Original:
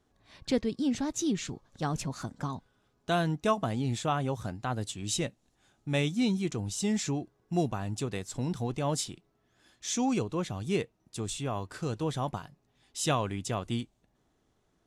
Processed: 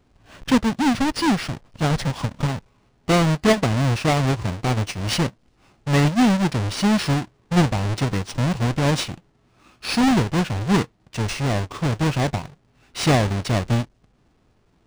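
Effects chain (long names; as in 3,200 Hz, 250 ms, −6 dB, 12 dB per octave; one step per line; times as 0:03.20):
each half-wave held at its own peak
formants moved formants −5 semitones
linearly interpolated sample-rate reduction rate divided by 3×
level +6.5 dB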